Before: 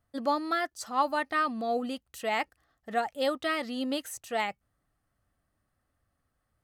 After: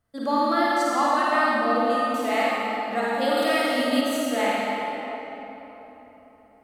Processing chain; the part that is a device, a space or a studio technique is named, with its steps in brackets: tunnel (flutter echo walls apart 8.9 m, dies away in 0.61 s; reverb RT60 3.8 s, pre-delay 34 ms, DRR -5.5 dB); 3.37–4.01 high shelf 6900 Hz +11 dB

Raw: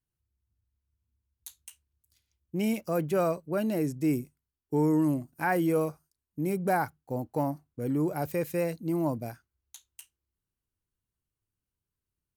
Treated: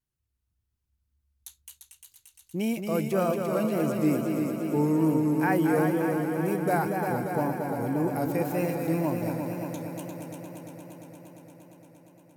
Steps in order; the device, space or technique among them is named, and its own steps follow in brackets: multi-head tape echo (multi-head echo 0.116 s, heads second and third, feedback 75%, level -6 dB; wow and flutter 47 cents)

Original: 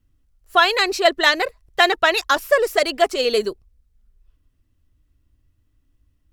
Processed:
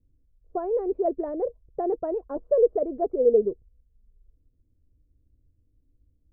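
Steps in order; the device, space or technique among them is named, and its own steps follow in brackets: under water (LPF 540 Hz 24 dB/oct; bell 480 Hz +6.5 dB 0.2 oct); gain -2 dB

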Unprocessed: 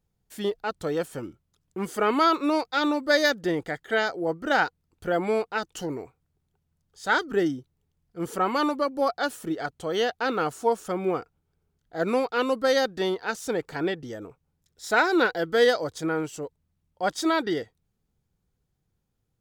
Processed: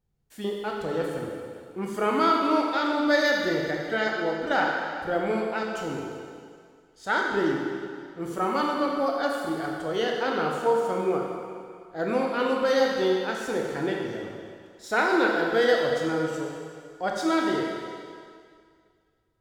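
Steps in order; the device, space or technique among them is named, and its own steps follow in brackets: swimming-pool hall (reverb RT60 2.1 s, pre-delay 15 ms, DRR -1 dB; high shelf 4500 Hz -5.5 dB); gain -3 dB

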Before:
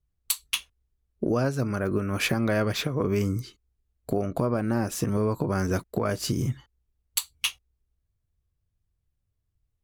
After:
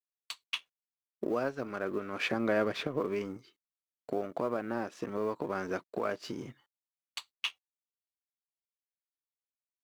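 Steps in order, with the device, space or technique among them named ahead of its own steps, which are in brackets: phone line with mismatched companding (BPF 320–3400 Hz; G.711 law mismatch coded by A); 2.32–3 low shelf 480 Hz +6.5 dB; gain -3.5 dB

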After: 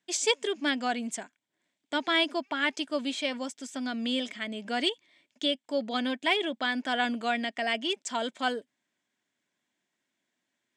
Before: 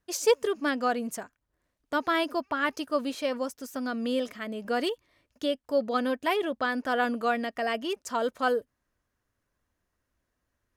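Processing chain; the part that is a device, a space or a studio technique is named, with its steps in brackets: television speaker (speaker cabinet 180–8500 Hz, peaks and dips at 490 Hz -9 dB, 1200 Hz -9 dB, 2200 Hz +7 dB, 3400 Hz +10 dB, 7700 Hz +8 dB)

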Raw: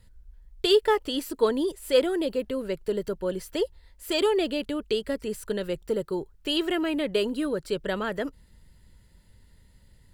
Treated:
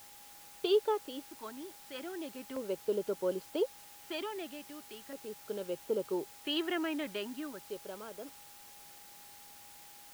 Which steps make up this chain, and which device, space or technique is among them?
shortwave radio (BPF 270–2800 Hz; tremolo 0.31 Hz, depth 74%; LFO notch square 0.39 Hz 480–1900 Hz; whine 820 Hz -57 dBFS; white noise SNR 16 dB); gain -3 dB

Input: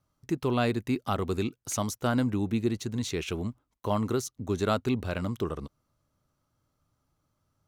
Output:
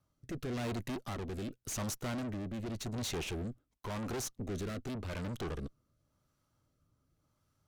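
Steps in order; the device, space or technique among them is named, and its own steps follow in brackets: overdriven rotary cabinet (tube stage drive 40 dB, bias 0.75; rotary speaker horn 0.9 Hz); gain +5.5 dB

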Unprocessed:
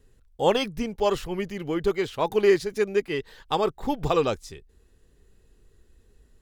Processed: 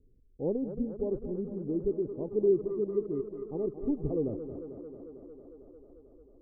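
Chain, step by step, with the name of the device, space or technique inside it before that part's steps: under water (LPF 440 Hz 24 dB/oct; bell 280 Hz +5 dB 0.41 oct); tape echo 0.224 s, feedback 82%, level -10 dB, low-pass 5500 Hz; gain -5 dB

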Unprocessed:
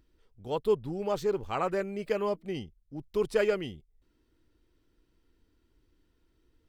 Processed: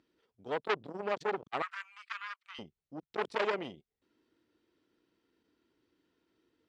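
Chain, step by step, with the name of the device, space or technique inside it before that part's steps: public-address speaker with an overloaded transformer (core saturation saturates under 2200 Hz; BPF 210–5400 Hz); 1.62–2.59 elliptic high-pass 1200 Hz, stop band 70 dB

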